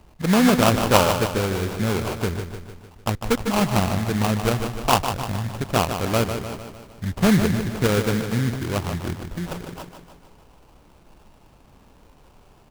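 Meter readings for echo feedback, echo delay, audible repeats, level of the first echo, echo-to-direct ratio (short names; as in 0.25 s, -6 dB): 54%, 0.151 s, 6, -8.0 dB, -6.5 dB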